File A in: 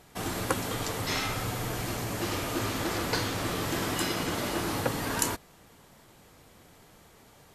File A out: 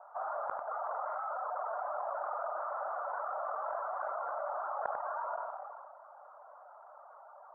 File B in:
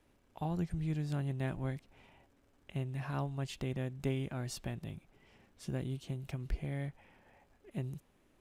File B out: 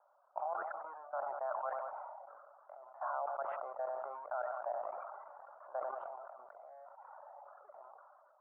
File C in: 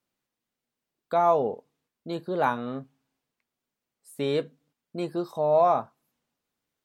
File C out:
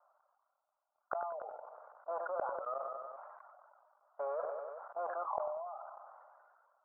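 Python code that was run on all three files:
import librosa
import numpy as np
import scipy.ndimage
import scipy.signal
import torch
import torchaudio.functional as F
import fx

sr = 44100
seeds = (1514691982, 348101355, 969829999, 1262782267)

p1 = fx.law_mismatch(x, sr, coded='mu')
p2 = fx.dereverb_blind(p1, sr, rt60_s=0.86)
p3 = scipy.signal.sosfilt(scipy.signal.cheby1(4, 1.0, [590.0, 1400.0], 'bandpass', fs=sr, output='sos'), p2)
p4 = fx.dynamic_eq(p3, sr, hz=980.0, q=2.6, threshold_db=-44.0, ratio=4.0, max_db=-3)
p5 = fx.level_steps(p4, sr, step_db=17)
p6 = fx.gate_flip(p5, sr, shuts_db=-35.0, range_db=-35)
p7 = fx.air_absorb(p6, sr, metres=500.0)
p8 = p7 + fx.echo_feedback(p7, sr, ms=95, feedback_pct=56, wet_db=-23.5, dry=0)
p9 = fx.sustainer(p8, sr, db_per_s=28.0)
y = p9 * librosa.db_to_amplitude(15.5)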